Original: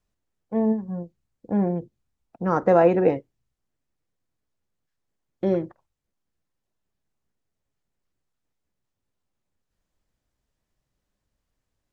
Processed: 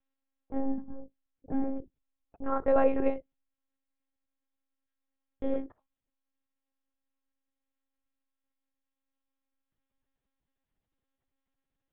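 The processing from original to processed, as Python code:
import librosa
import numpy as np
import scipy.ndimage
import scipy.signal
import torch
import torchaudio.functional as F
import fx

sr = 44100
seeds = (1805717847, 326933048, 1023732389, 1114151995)

y = fx.lpc_monotone(x, sr, seeds[0], pitch_hz=270.0, order=10)
y = y * librosa.db_to_amplitude(-6.5)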